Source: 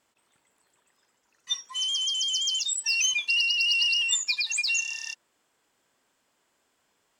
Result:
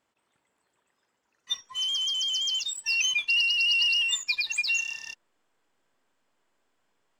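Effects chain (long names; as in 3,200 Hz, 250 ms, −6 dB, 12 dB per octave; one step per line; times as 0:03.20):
high-shelf EQ 4,400 Hz −9 dB
in parallel at −6 dB: slack as between gear wheels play −35.5 dBFS
on the sum: dynamic equaliser 2,700 Hz, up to +3 dB, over −32 dBFS, Q 0.73
level −3 dB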